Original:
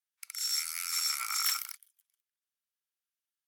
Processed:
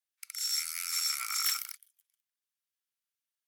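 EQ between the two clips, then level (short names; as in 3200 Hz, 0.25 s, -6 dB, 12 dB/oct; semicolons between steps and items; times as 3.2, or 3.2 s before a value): HPF 1200 Hz 12 dB/oct; 0.0 dB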